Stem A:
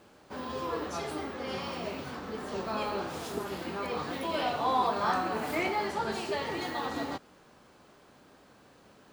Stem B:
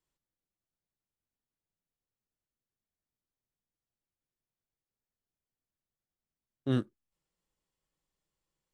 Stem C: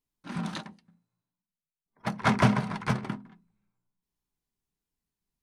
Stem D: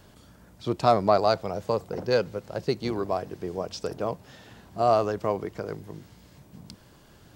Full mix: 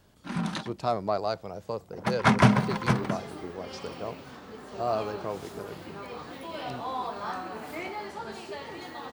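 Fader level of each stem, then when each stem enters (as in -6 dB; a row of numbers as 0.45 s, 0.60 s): -6.0 dB, -13.0 dB, +3.0 dB, -7.5 dB; 2.20 s, 0.00 s, 0.00 s, 0.00 s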